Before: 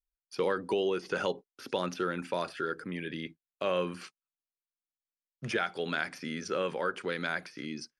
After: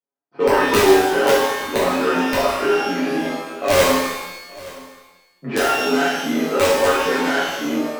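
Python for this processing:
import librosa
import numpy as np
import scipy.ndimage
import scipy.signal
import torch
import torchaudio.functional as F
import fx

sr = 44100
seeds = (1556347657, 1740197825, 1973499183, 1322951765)

y = fx.tracing_dist(x, sr, depth_ms=0.33)
y = scipy.signal.sosfilt(scipy.signal.butter(4, 200.0, 'highpass', fs=sr, output='sos'), y)
y = fx.env_lowpass(y, sr, base_hz=990.0, full_db=-29.0)
y = fx.lowpass(y, sr, hz=1400.0, slope=6)
y = y + 0.77 * np.pad(y, (int(7.2 * sr / 1000.0), 0))[:len(y)]
y = (np.mod(10.0 ** (19.5 / 20.0) * y + 1.0, 2.0) - 1.0) / 10.0 ** (19.5 / 20.0)
y = y + 10.0 ** (-20.5 / 20.0) * np.pad(y, (int(871 * sr / 1000.0), 0))[:len(y)]
y = fx.rev_shimmer(y, sr, seeds[0], rt60_s=1.0, semitones=12, shimmer_db=-8, drr_db=-9.0)
y = F.gain(torch.from_numpy(y), 4.5).numpy()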